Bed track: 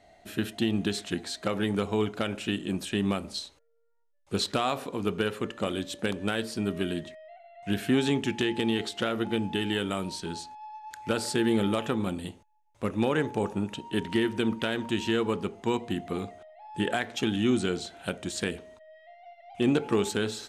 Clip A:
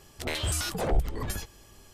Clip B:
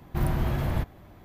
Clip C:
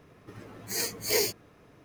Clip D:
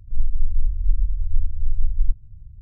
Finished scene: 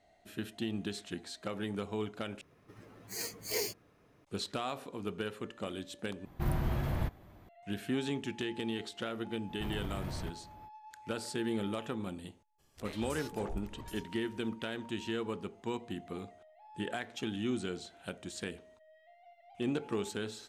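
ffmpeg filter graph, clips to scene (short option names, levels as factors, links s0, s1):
-filter_complex "[2:a]asplit=2[s0][s1];[0:a]volume=0.335[s2];[s1]alimiter=level_in=1.33:limit=0.0631:level=0:latency=1:release=19,volume=0.75[s3];[s2]asplit=3[s4][s5][s6];[s4]atrim=end=2.414[s7];[3:a]atrim=end=1.84,asetpts=PTS-STARTPTS,volume=0.376[s8];[s5]atrim=start=4.246:end=6.254[s9];[s0]atrim=end=1.24,asetpts=PTS-STARTPTS,volume=0.501[s10];[s6]atrim=start=7.486[s11];[s3]atrim=end=1.24,asetpts=PTS-STARTPTS,volume=0.473,afade=t=in:d=0.05,afade=t=out:st=1.19:d=0.05,adelay=417186S[s12];[1:a]atrim=end=1.93,asetpts=PTS-STARTPTS,volume=0.158,afade=t=in:d=0.02,afade=t=out:st=1.91:d=0.02,adelay=12580[s13];[s7][s8]acrossfade=d=0.004:c1=hsin:c2=hsin[s14];[s14][s9]acrossfade=d=0.004:c1=hsin:c2=hsin[s15];[s15][s10]acrossfade=d=0.004:c1=hsin:c2=hsin[s16];[s16][s11]acrossfade=d=0.004:c1=hsin:c2=hsin[s17];[s17][s12][s13]amix=inputs=3:normalize=0"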